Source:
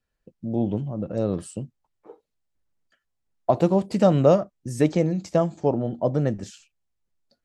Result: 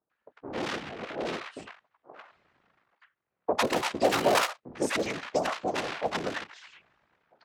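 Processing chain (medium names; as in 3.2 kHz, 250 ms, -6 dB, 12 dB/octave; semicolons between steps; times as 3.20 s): cycle switcher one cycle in 3, inverted; tilt shelf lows -5.5 dB, about 810 Hz; reverse; upward compressor, threshold -43 dBFS; reverse; treble shelf 6.6 kHz -7.5 dB; bands offset in time lows, highs 100 ms, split 820 Hz; whisper effect; level-controlled noise filter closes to 1.3 kHz, open at -19 dBFS; high-pass 560 Hz 6 dB/octave; tape noise reduction on one side only encoder only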